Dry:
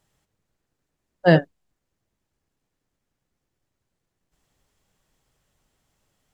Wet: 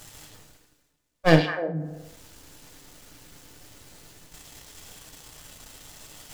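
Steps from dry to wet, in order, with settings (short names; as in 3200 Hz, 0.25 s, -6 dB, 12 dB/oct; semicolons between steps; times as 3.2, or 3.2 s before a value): half-wave gain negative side -12 dB; high shelf 2900 Hz +9 dB; delay with a stepping band-pass 0.103 s, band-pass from 3500 Hz, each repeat -1.4 oct, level -3 dB; FDN reverb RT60 0.55 s, low-frequency decay 0.75×, high-frequency decay 0.75×, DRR 5 dB; reverse; upward compressor, threshold -24 dBFS; reverse; gain -1.5 dB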